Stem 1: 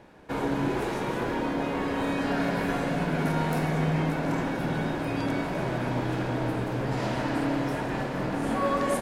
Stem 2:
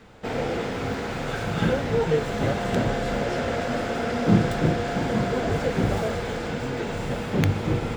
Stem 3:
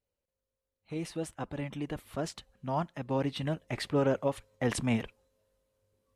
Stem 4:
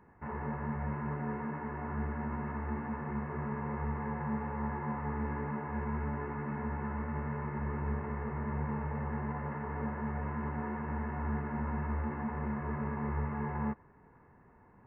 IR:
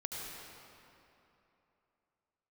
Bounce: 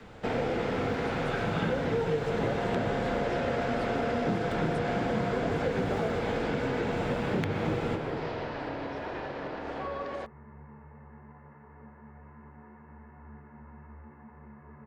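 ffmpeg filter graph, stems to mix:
-filter_complex "[0:a]lowpass=f=5k:w=0.5412,lowpass=f=5k:w=1.3066,lowshelf=f=310:t=q:w=1.5:g=-7.5,alimiter=level_in=1dB:limit=-24dB:level=0:latency=1:release=156,volume=-1dB,adelay=1250,volume=-6dB,asplit=2[a][b];[b]volume=-4.5dB[c];[1:a]highshelf=f=5.6k:g=-7.5,acrossover=split=320|3000[d][e][f];[d]acompressor=threshold=-23dB:ratio=6[g];[g][e][f]amix=inputs=3:normalize=0,volume=-1.5dB,asplit=2[h][i];[i]volume=-5.5dB[j];[2:a]volume=-10.5dB[k];[3:a]adelay=2000,volume=-14.5dB[l];[4:a]atrim=start_sample=2205[m];[c][j]amix=inputs=2:normalize=0[n];[n][m]afir=irnorm=-1:irlink=0[o];[a][h][k][l][o]amix=inputs=5:normalize=0,acrossover=split=120|4600[p][q][r];[p]acompressor=threshold=-42dB:ratio=4[s];[q]acompressor=threshold=-27dB:ratio=4[t];[r]acompressor=threshold=-59dB:ratio=4[u];[s][t][u]amix=inputs=3:normalize=0"

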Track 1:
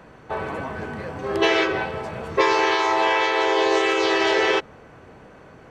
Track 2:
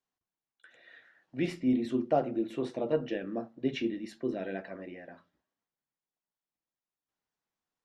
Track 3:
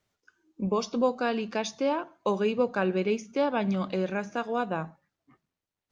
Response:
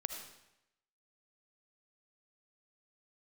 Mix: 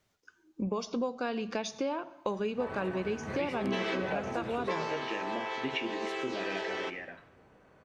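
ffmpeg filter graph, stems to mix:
-filter_complex "[0:a]adelay=2300,volume=-5dB,afade=t=out:st=4.57:d=0.52:silence=0.251189,asplit=2[a][b];[b]volume=-7.5dB[c];[1:a]equalizer=f=2.4k:w=1:g=14,adelay=2000,volume=-3dB,asplit=2[d][e];[e]volume=-10.5dB[f];[2:a]volume=2dB,asplit=2[g][h];[h]volume=-16.5dB[i];[3:a]atrim=start_sample=2205[j];[c][f][i]amix=inputs=3:normalize=0[k];[k][j]afir=irnorm=-1:irlink=0[l];[a][d][g][l]amix=inputs=4:normalize=0,acompressor=threshold=-31dB:ratio=4"

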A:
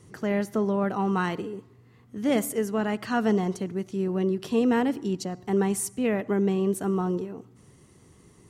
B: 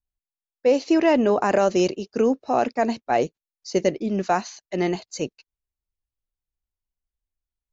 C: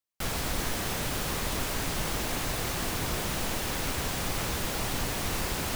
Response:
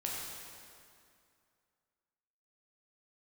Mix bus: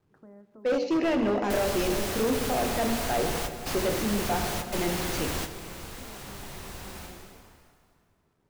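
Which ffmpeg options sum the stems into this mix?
-filter_complex "[0:a]lowpass=f=1.4k:w=0.5412,lowpass=f=1.4k:w=1.3066,acompressor=threshold=-32dB:ratio=6,aeval=exprs='val(0)*gte(abs(val(0)),0.00188)':c=same,volume=-18dB,asplit=2[a][b];[b]volume=-12dB[c];[1:a]lowpass=5k,equalizer=f=1k:t=o:w=1.3:g=-6,bandreject=f=48.18:t=h:w=4,bandreject=f=96.36:t=h:w=4,bandreject=f=144.54:t=h:w=4,bandreject=f=192.72:t=h:w=4,bandreject=f=240.9:t=h:w=4,bandreject=f=289.08:t=h:w=4,bandreject=f=337.26:t=h:w=4,bandreject=f=385.44:t=h:w=4,bandreject=f=433.62:t=h:w=4,bandreject=f=481.8:t=h:w=4,bandreject=f=529.98:t=h:w=4,bandreject=f=578.16:t=h:w=4,volume=-6.5dB,asplit=3[d][e][f];[e]volume=-3.5dB[g];[2:a]adelay=1300,volume=-2dB,asplit=2[h][i];[i]volume=-11.5dB[j];[f]apad=whole_len=311035[k];[h][k]sidechaingate=range=-33dB:threshold=-53dB:ratio=16:detection=peak[l];[3:a]atrim=start_sample=2205[m];[c][g][j]amix=inputs=3:normalize=0[n];[n][m]afir=irnorm=-1:irlink=0[o];[a][d][l][o]amix=inputs=4:normalize=0,bandreject=f=60:t=h:w=6,bandreject=f=120:t=h:w=6,bandreject=f=180:t=h:w=6,bandreject=f=240:t=h:w=6,bandreject=f=300:t=h:w=6,bandreject=f=360:t=h:w=6,bandreject=f=420:t=h:w=6,bandreject=f=480:t=h:w=6,asoftclip=type=hard:threshold=-21.5dB"

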